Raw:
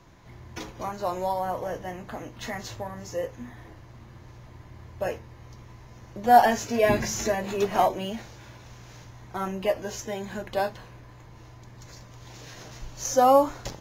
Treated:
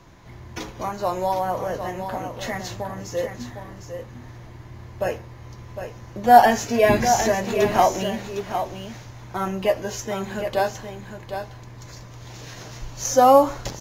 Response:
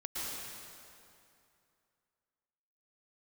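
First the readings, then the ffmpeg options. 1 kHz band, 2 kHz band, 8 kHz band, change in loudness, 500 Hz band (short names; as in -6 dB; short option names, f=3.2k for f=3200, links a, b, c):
+5.0 dB, +5.0 dB, +5.0 dB, +4.5 dB, +5.0 dB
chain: -filter_complex "[0:a]aecho=1:1:757:0.376,asplit=2[a][b];[1:a]atrim=start_sample=2205,afade=t=out:st=0.2:d=0.01,atrim=end_sample=9261[c];[b][c]afir=irnorm=-1:irlink=0,volume=-20.5dB[d];[a][d]amix=inputs=2:normalize=0,volume=4dB"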